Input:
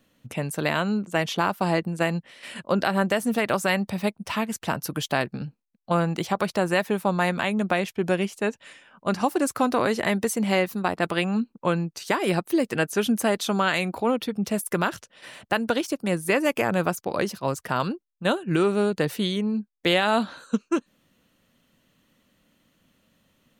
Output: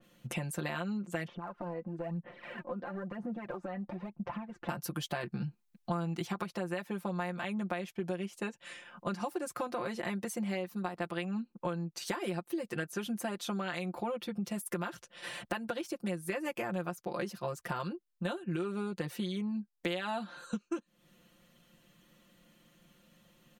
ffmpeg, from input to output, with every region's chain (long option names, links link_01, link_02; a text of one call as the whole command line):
ffmpeg -i in.wav -filter_complex "[0:a]asettb=1/sr,asplit=3[link_01][link_02][link_03];[link_01]atrim=end=1.274[link_04];[link_02]atrim=start=1.27:end=4.69,asetpts=PTS-STARTPTS,afade=type=in:duration=0.004:curve=qsin,afade=type=out:start_time=3.416:duration=0.004:curve=qsin,lowpass=1200,acompressor=threshold=-40dB:ratio=4:attack=3.2:release=140:knee=1:detection=peak,aphaser=in_gain=1:out_gain=1:delay=4.1:decay=0.6:speed=1:type=sinusoidal[link_05];[link_03]atrim=start=4.686[link_06];[link_04][link_05]acrossfade=duration=0.004:curve1=hsin:curve2=qsin[link_07];[link_07][link_06]acrossfade=duration=0.004:curve1=qsin:curve2=hsin,asettb=1/sr,asplit=3[link_08][link_09][link_10];[link_08]atrim=end=5.234[link_11];[link_09]atrim=start=5.23:end=6.44,asetpts=PTS-STARTPTS,afade=type=in:duration=0.004:curve=qsin,afade=type=out:start_time=1.206:duration=0.004:curve=qsin,equalizer=frequency=560:width_type=o:width=0.36:gain=-8.5,acontrast=39[link_12];[link_10]atrim=start=6.436[link_13];[link_11][link_12]acrossfade=duration=0.004:curve1=hsin:curve2=qsin[link_14];[link_14][link_13]acrossfade=duration=0.004:curve1=qsin:curve2=hsin,aecho=1:1:5.7:0.93,acompressor=threshold=-33dB:ratio=5,adynamicequalizer=threshold=0.00355:dfrequency=3000:dqfactor=0.7:tfrequency=3000:tqfactor=0.7:attack=5:release=100:ratio=0.375:range=2:mode=cutabove:tftype=highshelf,volume=-1.5dB" out.wav